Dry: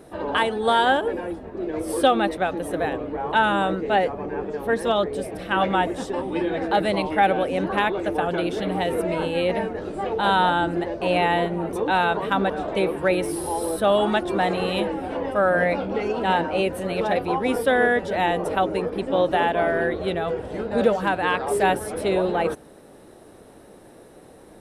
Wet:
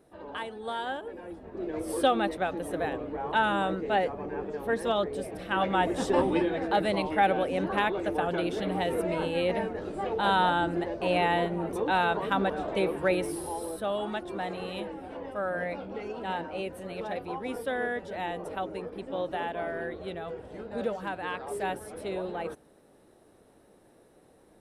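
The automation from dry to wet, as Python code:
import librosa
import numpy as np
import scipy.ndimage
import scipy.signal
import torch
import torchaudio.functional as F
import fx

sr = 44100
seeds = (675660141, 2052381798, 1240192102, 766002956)

y = fx.gain(x, sr, db=fx.line((1.13, -15.0), (1.56, -6.0), (5.71, -6.0), (6.21, 4.0), (6.52, -5.0), (13.14, -5.0), (13.9, -12.0)))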